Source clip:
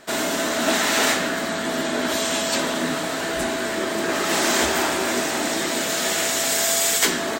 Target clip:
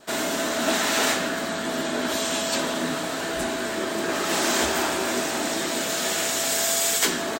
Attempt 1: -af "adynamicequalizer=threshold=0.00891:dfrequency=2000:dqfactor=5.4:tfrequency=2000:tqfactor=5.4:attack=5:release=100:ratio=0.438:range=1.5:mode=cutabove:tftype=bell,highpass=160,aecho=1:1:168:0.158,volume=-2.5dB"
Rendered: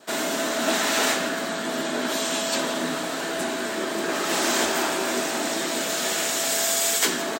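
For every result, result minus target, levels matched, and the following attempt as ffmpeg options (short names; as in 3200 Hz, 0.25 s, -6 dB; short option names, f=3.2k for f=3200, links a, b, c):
echo-to-direct +6.5 dB; 125 Hz band -3.0 dB
-af "adynamicequalizer=threshold=0.00891:dfrequency=2000:dqfactor=5.4:tfrequency=2000:tqfactor=5.4:attack=5:release=100:ratio=0.438:range=1.5:mode=cutabove:tftype=bell,highpass=160,aecho=1:1:168:0.075,volume=-2.5dB"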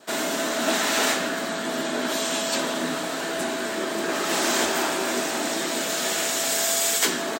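125 Hz band -3.0 dB
-af "adynamicequalizer=threshold=0.00891:dfrequency=2000:dqfactor=5.4:tfrequency=2000:tqfactor=5.4:attack=5:release=100:ratio=0.438:range=1.5:mode=cutabove:tftype=bell,aecho=1:1:168:0.075,volume=-2.5dB"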